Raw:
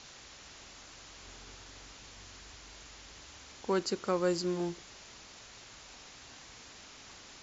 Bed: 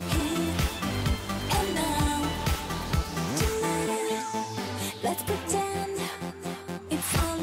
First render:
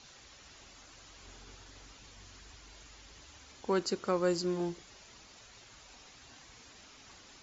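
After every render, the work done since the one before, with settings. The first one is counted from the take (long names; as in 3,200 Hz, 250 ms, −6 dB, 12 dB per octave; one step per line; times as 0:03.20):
broadband denoise 7 dB, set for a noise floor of −53 dBFS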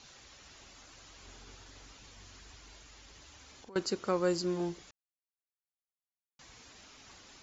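0:02.76–0:03.76: downward compressor, threshold −50 dBFS
0:04.91–0:06.39: silence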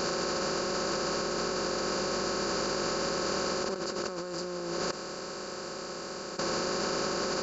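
compressor on every frequency bin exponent 0.2
compressor whose output falls as the input rises −32 dBFS, ratio −1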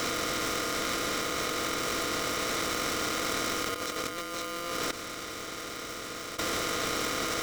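ring modulator with a square carrier 860 Hz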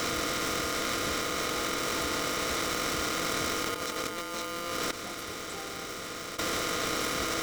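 mix in bed −18.5 dB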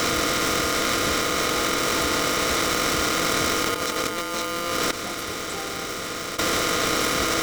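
level +8 dB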